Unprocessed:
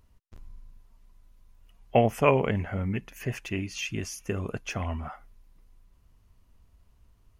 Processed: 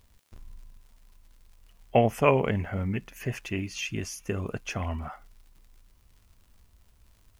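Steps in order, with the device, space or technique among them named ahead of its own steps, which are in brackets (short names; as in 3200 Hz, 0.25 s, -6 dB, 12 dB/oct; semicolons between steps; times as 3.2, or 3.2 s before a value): vinyl LP (crackle 130/s -50 dBFS; white noise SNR 43 dB)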